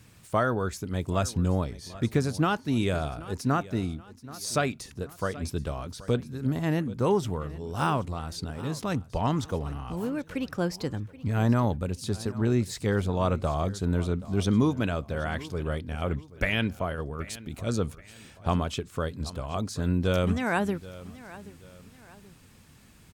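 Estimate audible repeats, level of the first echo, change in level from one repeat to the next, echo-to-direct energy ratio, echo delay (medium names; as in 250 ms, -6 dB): 2, -18.0 dB, -8.0 dB, -17.5 dB, 779 ms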